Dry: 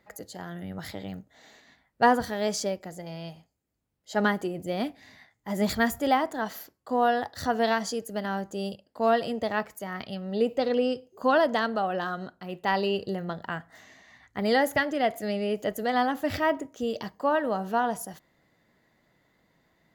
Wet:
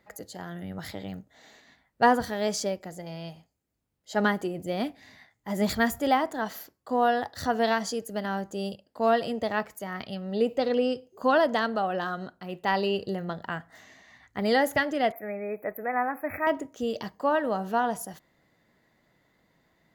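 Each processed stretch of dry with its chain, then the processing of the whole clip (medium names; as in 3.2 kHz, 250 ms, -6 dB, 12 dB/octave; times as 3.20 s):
15.12–16.47 s: brick-wall FIR band-stop 2.6–11 kHz + bass shelf 330 Hz -12 dB
whole clip: none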